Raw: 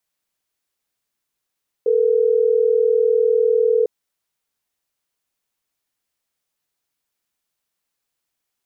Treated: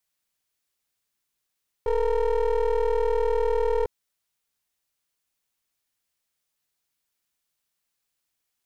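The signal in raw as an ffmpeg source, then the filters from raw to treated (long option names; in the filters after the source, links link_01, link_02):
-f lavfi -i "aevalsrc='0.158*(sin(2*PI*440*t)+sin(2*PI*480*t))*clip(min(mod(t,6),2-mod(t,6))/0.005,0,1)':duration=3.12:sample_rate=44100"
-af "equalizer=frequency=480:width=0.34:gain=-4,aeval=exprs='clip(val(0),-1,0.0266)':channel_layout=same"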